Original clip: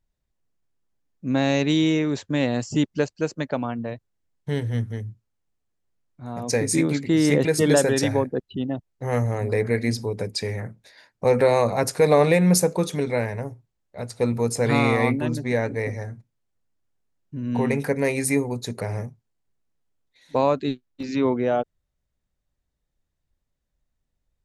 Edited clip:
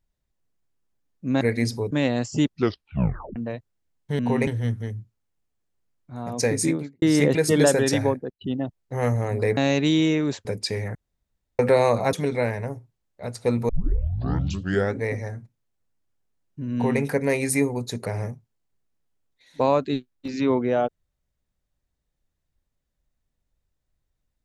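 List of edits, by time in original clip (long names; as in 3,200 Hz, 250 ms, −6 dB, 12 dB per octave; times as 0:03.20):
0:01.41–0:02.29: swap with 0:09.67–0:10.17
0:02.86: tape stop 0.88 s
0:06.66–0:07.12: fade out and dull
0:08.18–0:08.51: fade out, to −21.5 dB
0:10.67–0:11.31: fill with room tone
0:11.85–0:12.88: remove
0:14.44: tape start 1.31 s
0:17.48–0:17.76: duplicate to 0:04.57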